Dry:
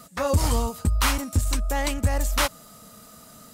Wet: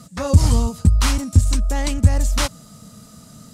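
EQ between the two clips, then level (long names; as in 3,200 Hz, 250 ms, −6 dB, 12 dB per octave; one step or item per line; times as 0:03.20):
high-frequency loss of the air 60 metres
bass and treble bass +6 dB, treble +11 dB
parametric band 140 Hz +8 dB 2.1 octaves
−1.5 dB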